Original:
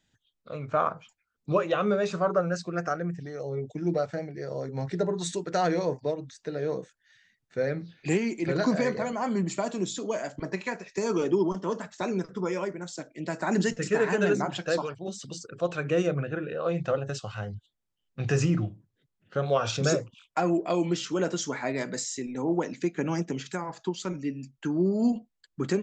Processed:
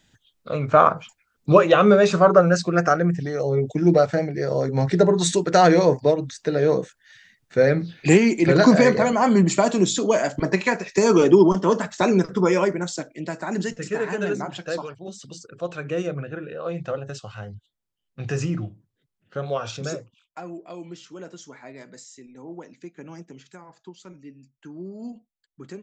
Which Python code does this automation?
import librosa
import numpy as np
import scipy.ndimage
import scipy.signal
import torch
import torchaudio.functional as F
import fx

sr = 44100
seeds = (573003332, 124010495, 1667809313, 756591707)

y = fx.gain(x, sr, db=fx.line((12.81, 11.0), (13.48, -1.0), (19.49, -1.0), (20.5, -11.5)))